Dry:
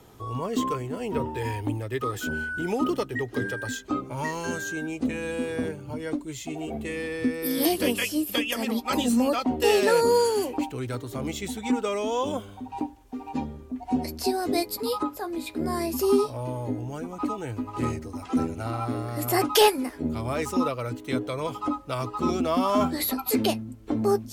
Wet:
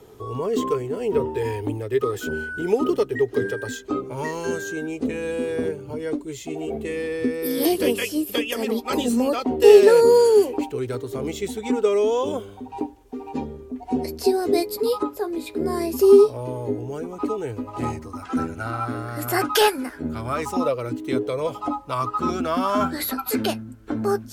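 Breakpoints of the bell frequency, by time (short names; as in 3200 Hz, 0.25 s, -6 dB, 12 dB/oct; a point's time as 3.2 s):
bell +12.5 dB 0.39 oct
17.51 s 420 Hz
18.25 s 1500 Hz
20.28 s 1500 Hz
20.95 s 280 Hz
22.23 s 1500 Hz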